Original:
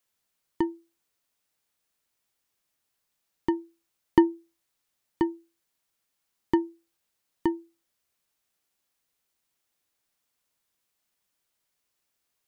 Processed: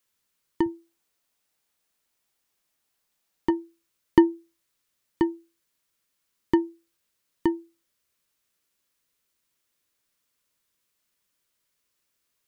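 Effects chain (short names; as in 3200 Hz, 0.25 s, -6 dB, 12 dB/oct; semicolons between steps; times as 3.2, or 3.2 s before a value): bell 710 Hz -10 dB 0.27 oct, from 0.66 s 110 Hz, from 3.5 s 770 Hz; gain +2.5 dB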